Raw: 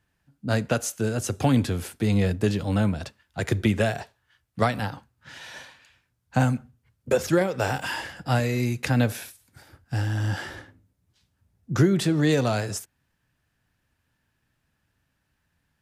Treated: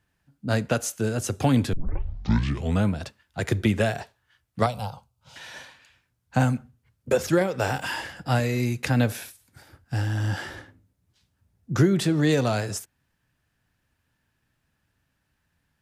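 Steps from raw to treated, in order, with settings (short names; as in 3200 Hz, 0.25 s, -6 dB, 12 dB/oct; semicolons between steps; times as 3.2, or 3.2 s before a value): 1.73 tape start 1.12 s; 4.66–5.36 fixed phaser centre 730 Hz, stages 4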